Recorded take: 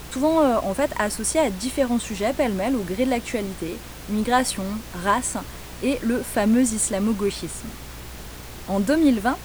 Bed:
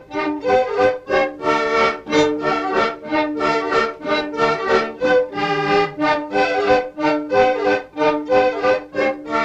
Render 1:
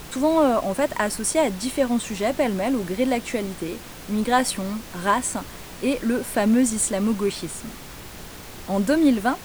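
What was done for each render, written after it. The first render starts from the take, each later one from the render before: de-hum 60 Hz, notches 2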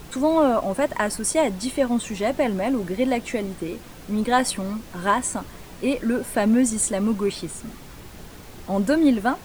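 noise reduction 6 dB, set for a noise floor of -39 dBFS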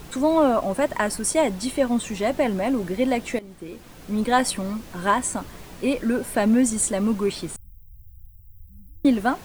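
3.39–4.21 s: fade in, from -16 dB; 7.56–9.05 s: inverse Chebyshev band-stop 480–4600 Hz, stop band 80 dB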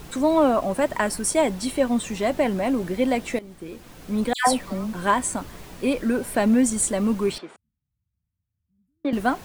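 4.33–4.93 s: phase dispersion lows, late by 142 ms, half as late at 1.5 kHz; 7.38–9.13 s: band-pass 450–2400 Hz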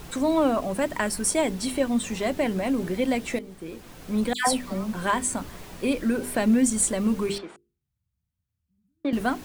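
hum notches 50/100/150/200/250/300/350/400/450 Hz; dynamic bell 810 Hz, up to -5 dB, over -30 dBFS, Q 0.71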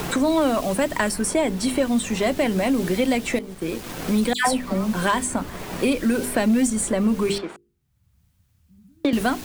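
waveshaping leveller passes 1; three bands compressed up and down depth 70%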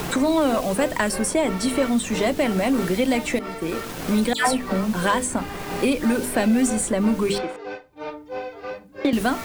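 add bed -16.5 dB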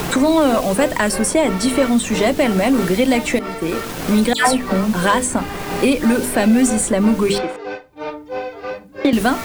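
trim +5.5 dB; peak limiter -3 dBFS, peak gain reduction 2 dB

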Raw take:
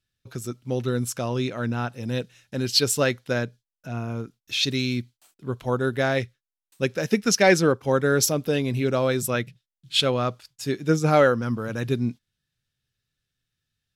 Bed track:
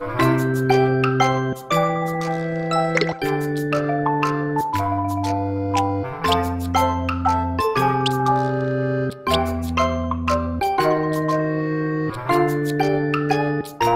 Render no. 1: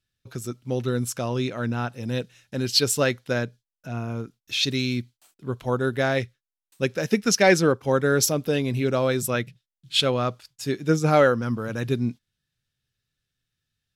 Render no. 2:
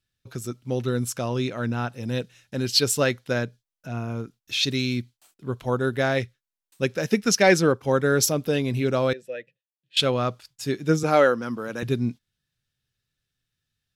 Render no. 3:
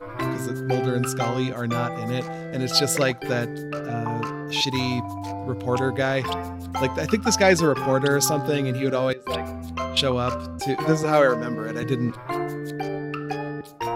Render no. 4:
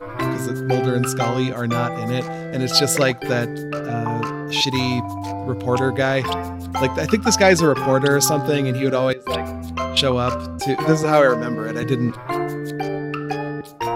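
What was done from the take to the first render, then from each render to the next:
no audible change
9.13–9.97 s: vowel filter e; 11.03–11.83 s: high-pass 230 Hz
add bed track -9.5 dB
trim +4 dB; peak limiter -3 dBFS, peak gain reduction 1.5 dB

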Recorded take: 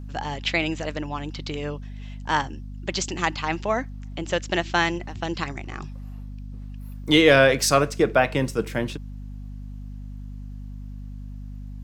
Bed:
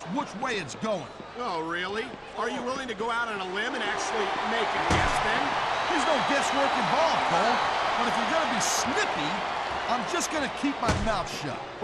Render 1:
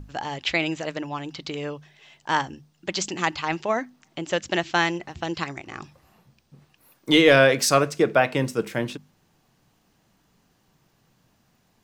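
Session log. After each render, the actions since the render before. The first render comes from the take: hum notches 50/100/150/200/250 Hz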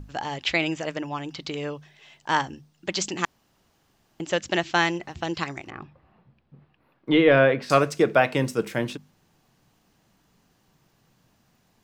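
0.65–1.34 s: band-stop 4 kHz, Q 8.2; 3.25–4.20 s: room tone; 5.70–7.70 s: distance through air 430 m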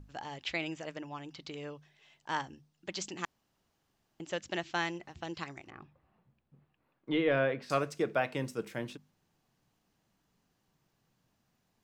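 trim -11.5 dB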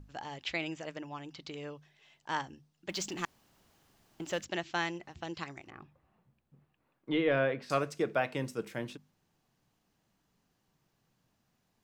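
2.89–4.45 s: companding laws mixed up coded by mu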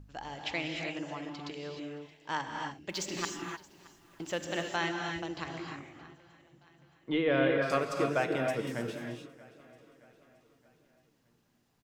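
feedback delay 623 ms, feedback 52%, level -22 dB; gated-style reverb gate 330 ms rising, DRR 2 dB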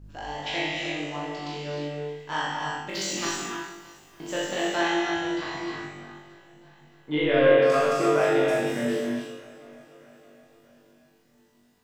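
flutter echo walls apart 3.5 m, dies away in 0.53 s; Schroeder reverb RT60 0.75 s, combs from 26 ms, DRR -1.5 dB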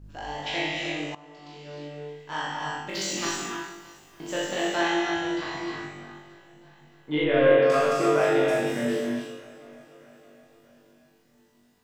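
1.15–2.91 s: fade in, from -19 dB; 7.24–7.70 s: distance through air 120 m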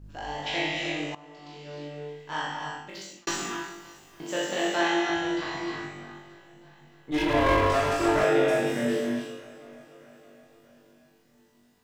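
2.38–3.27 s: fade out; 4.23–5.10 s: high-pass 150 Hz; 7.11–8.24 s: comb filter that takes the minimum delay 3 ms

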